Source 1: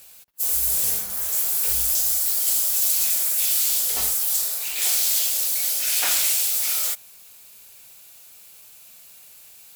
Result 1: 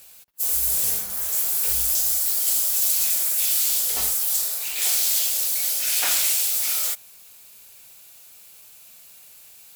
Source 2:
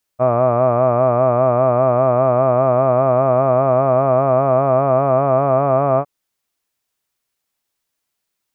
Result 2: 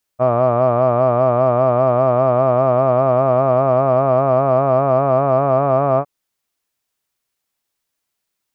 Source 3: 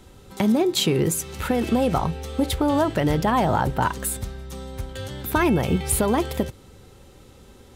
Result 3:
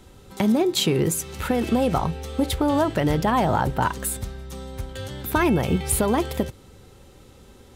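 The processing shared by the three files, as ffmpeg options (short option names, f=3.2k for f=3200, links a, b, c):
-af "aeval=exprs='0.668*(cos(1*acos(clip(val(0)/0.668,-1,1)))-cos(1*PI/2))+0.00473*(cos(7*acos(clip(val(0)/0.668,-1,1)))-cos(7*PI/2))':c=same"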